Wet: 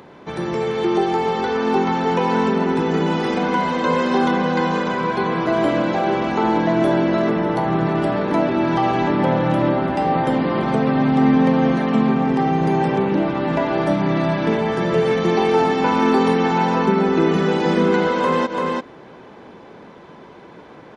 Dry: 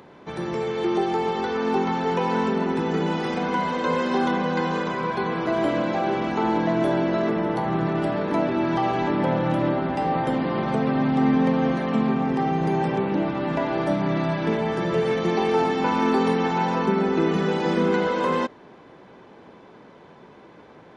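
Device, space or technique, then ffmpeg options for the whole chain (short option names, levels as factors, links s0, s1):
ducked delay: -filter_complex "[0:a]asplit=3[s0][s1][s2];[s1]adelay=339,volume=0.668[s3];[s2]apad=whole_len=939689[s4];[s3][s4]sidechaincompress=threshold=0.0224:ratio=8:attack=10:release=116[s5];[s0][s5]amix=inputs=2:normalize=0,volume=1.68"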